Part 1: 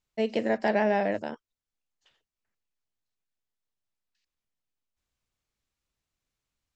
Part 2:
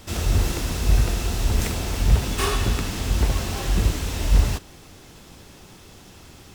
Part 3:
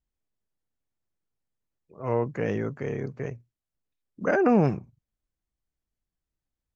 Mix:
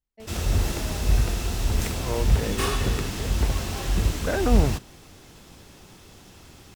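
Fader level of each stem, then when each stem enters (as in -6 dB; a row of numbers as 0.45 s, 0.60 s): -18.0 dB, -2.5 dB, -3.5 dB; 0.00 s, 0.20 s, 0.00 s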